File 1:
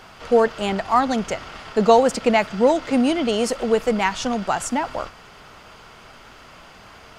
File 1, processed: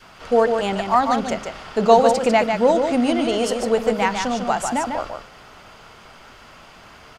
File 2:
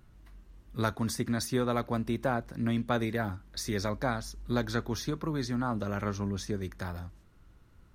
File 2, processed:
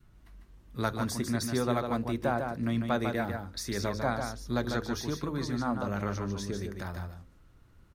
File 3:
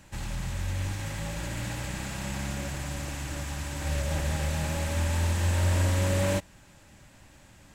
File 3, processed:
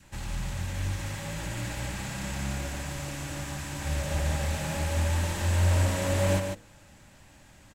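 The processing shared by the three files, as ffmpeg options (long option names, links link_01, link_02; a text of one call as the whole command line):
ffmpeg -i in.wav -filter_complex "[0:a]bandreject=frequency=52.76:width_type=h:width=4,bandreject=frequency=105.52:width_type=h:width=4,bandreject=frequency=158.28:width_type=h:width=4,bandreject=frequency=211.04:width_type=h:width=4,bandreject=frequency=263.8:width_type=h:width=4,bandreject=frequency=316.56:width_type=h:width=4,bandreject=frequency=369.32:width_type=h:width=4,bandreject=frequency=422.08:width_type=h:width=4,bandreject=frequency=474.84:width_type=h:width=4,bandreject=frequency=527.6:width_type=h:width=4,adynamicequalizer=threshold=0.0141:dfrequency=700:dqfactor=1.9:tfrequency=700:tqfactor=1.9:attack=5:release=100:ratio=0.375:range=1.5:mode=boostabove:tftype=bell,asplit=2[link_01][link_02];[link_02]aecho=0:1:148:0.531[link_03];[link_01][link_03]amix=inputs=2:normalize=0,volume=-1dB" out.wav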